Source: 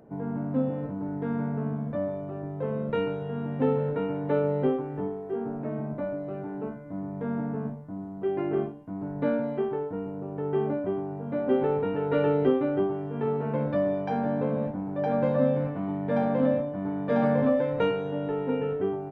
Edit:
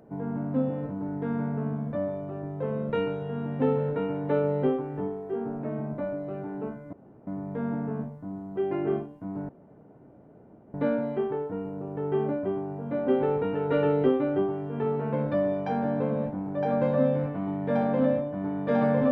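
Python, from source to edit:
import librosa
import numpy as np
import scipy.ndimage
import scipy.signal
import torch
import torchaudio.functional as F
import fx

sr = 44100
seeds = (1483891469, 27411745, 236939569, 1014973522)

y = fx.edit(x, sr, fx.insert_room_tone(at_s=6.93, length_s=0.34),
    fx.insert_room_tone(at_s=9.15, length_s=1.25), tone=tone)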